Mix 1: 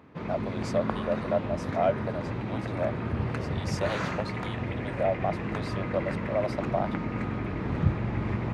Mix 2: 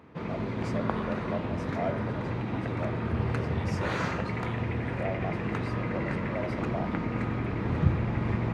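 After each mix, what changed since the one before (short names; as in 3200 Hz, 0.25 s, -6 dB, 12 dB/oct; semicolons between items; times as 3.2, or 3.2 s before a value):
speech -8.5 dB; reverb: on, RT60 0.65 s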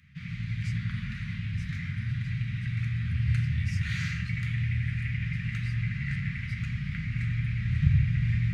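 background: send +10.0 dB; master: add elliptic band-stop 160–1900 Hz, stop band 50 dB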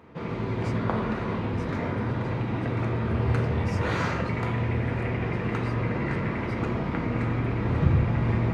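speech: remove resonant high-pass 600 Hz, resonance Q 5.9; master: remove elliptic band-stop 160–1900 Hz, stop band 50 dB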